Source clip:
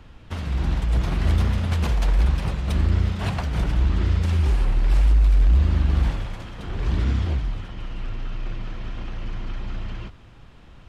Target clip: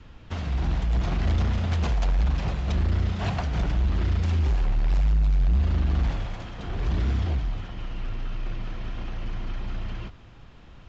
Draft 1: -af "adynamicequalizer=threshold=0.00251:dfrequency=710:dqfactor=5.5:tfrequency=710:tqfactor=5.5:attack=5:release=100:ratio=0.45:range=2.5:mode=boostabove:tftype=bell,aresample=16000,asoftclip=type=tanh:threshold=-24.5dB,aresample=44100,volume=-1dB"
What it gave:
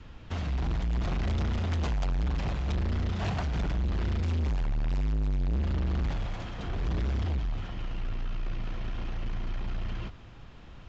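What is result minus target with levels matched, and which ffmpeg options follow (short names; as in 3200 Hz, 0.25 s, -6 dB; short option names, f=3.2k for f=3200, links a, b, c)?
soft clip: distortion +8 dB
-af "adynamicequalizer=threshold=0.00251:dfrequency=710:dqfactor=5.5:tfrequency=710:tqfactor=5.5:attack=5:release=100:ratio=0.45:range=2.5:mode=boostabove:tftype=bell,aresample=16000,asoftclip=type=tanh:threshold=-15.5dB,aresample=44100,volume=-1dB"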